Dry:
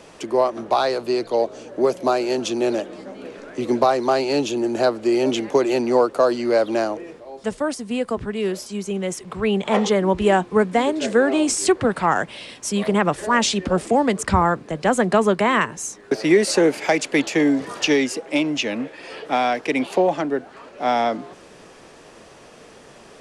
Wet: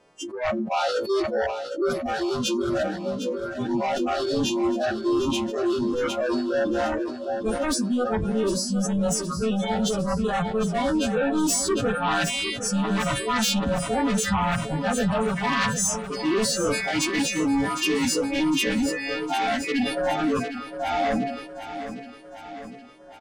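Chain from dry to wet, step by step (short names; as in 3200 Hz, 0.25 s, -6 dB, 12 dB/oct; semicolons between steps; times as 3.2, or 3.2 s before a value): frequency quantiser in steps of 2 st; LPF 1100 Hz 6 dB/oct; limiter -13 dBFS, peak gain reduction 7.5 dB; reverse; compressor 10:1, threshold -29 dBFS, peak gain reduction 12.5 dB; reverse; sine folder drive 10 dB, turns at -19 dBFS; spectral noise reduction 26 dB; on a send: feedback echo 0.758 s, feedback 58%, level -11 dB; on the sum: sustainer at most 64 dB/s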